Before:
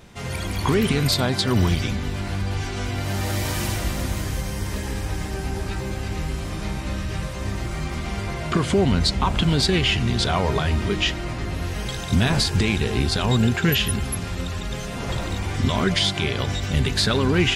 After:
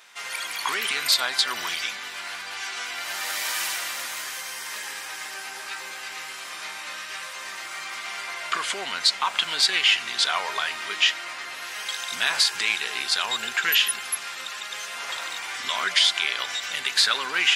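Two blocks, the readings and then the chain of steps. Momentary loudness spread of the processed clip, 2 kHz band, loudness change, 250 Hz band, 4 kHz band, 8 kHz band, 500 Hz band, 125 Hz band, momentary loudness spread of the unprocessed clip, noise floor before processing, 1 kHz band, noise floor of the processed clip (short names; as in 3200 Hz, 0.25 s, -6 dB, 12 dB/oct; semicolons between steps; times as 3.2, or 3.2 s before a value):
14 LU, +3.5 dB, -1.5 dB, -26.0 dB, +3.0 dB, +2.5 dB, -15.0 dB, under -35 dB, 10 LU, -30 dBFS, -1.5 dB, -37 dBFS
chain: Chebyshev high-pass 1400 Hz, order 2; gain +3.5 dB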